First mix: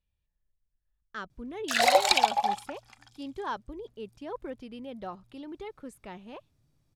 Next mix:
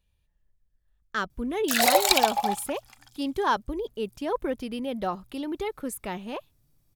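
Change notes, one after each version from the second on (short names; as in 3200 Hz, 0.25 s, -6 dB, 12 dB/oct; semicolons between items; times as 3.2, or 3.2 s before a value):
speech +9.5 dB; master: remove air absorption 62 m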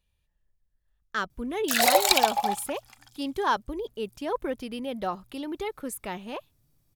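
speech: add low shelf 410 Hz -3.5 dB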